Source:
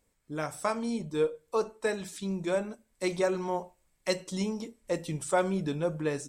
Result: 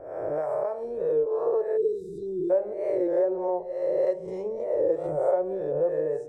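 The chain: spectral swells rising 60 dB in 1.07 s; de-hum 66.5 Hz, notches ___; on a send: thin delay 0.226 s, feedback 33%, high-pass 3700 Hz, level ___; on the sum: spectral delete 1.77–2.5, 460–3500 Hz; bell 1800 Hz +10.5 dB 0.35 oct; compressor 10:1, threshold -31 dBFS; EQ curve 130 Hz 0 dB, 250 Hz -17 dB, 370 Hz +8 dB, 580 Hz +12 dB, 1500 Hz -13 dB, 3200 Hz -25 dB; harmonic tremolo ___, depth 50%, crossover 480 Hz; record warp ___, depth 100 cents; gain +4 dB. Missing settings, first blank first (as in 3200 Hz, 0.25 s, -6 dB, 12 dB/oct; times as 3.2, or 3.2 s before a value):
14, -17 dB, 3.3 Hz, 33 1/3 rpm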